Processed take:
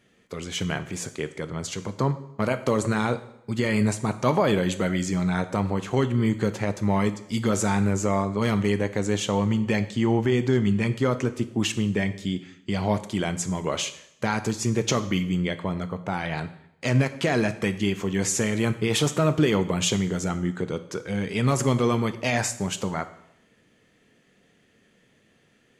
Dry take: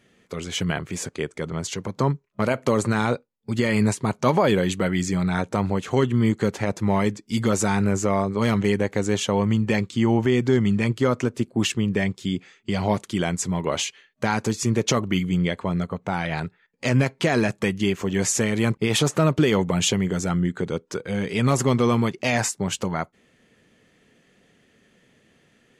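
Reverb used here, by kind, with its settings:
dense smooth reverb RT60 0.76 s, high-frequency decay 0.95×, DRR 10.5 dB
level −2.5 dB

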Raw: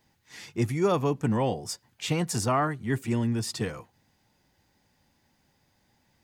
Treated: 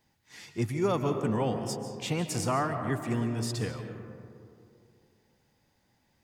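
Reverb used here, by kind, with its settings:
comb and all-pass reverb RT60 2.5 s, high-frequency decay 0.3×, pre-delay 105 ms, DRR 6.5 dB
level −3.5 dB

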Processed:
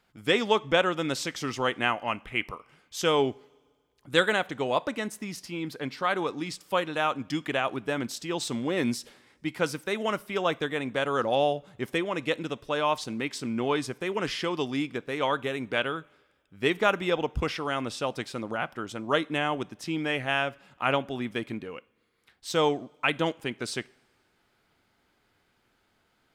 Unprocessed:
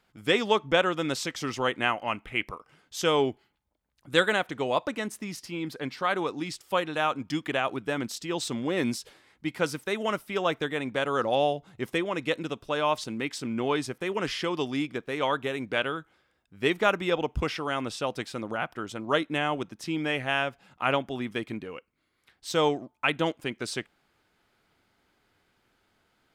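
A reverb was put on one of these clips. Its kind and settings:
coupled-rooms reverb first 0.43 s, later 1.9 s, from −17 dB, DRR 19.5 dB

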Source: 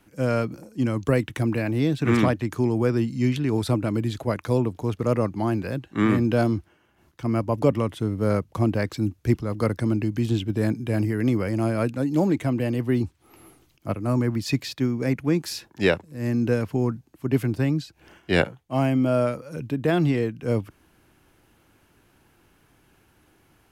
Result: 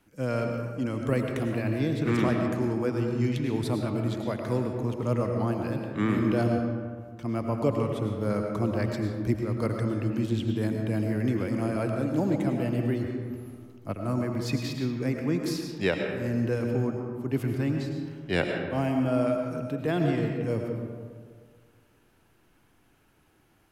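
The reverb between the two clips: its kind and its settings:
comb and all-pass reverb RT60 1.8 s, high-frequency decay 0.45×, pre-delay 65 ms, DRR 2.5 dB
level −6 dB

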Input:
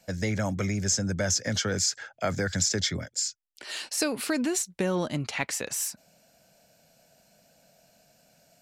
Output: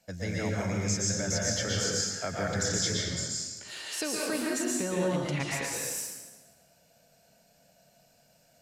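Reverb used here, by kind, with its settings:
dense smooth reverb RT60 1.3 s, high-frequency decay 0.8×, pre-delay 105 ms, DRR −4 dB
level −7 dB

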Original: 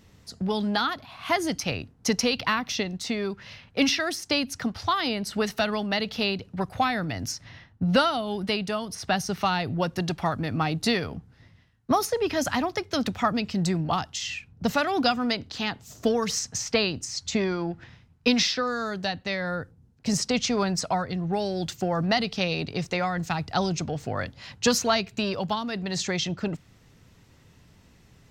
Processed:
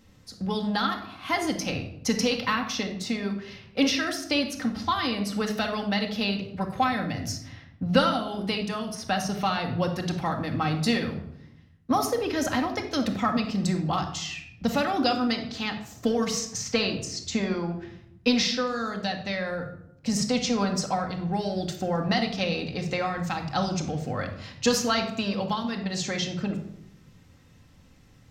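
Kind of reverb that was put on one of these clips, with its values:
rectangular room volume 1,900 cubic metres, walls furnished, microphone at 2.1 metres
level −3 dB

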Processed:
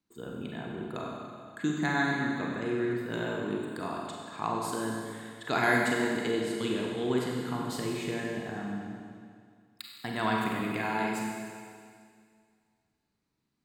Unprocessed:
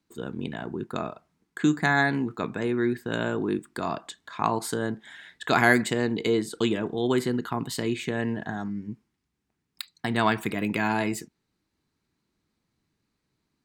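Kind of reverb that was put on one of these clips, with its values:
four-comb reverb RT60 2.1 s, combs from 32 ms, DRR −1.5 dB
level −8 dB

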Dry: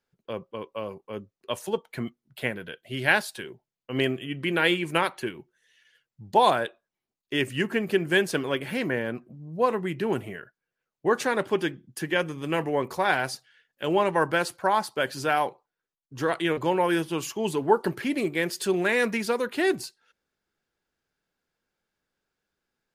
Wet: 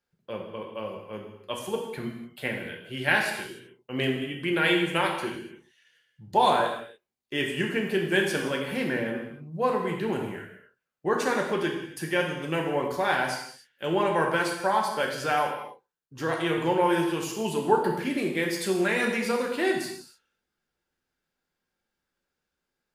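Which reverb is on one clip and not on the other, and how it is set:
reverb whose tail is shaped and stops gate 320 ms falling, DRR 0 dB
level −3.5 dB

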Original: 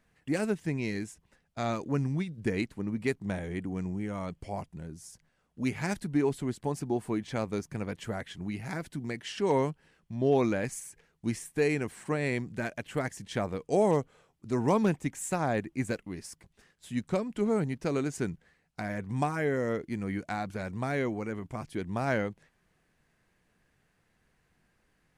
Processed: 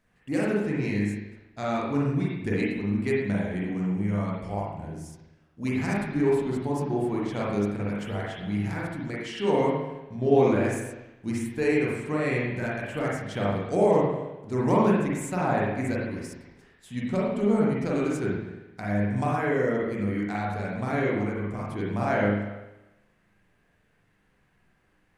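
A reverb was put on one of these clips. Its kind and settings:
spring reverb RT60 1 s, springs 39/49 ms, chirp 65 ms, DRR −5.5 dB
level −2 dB

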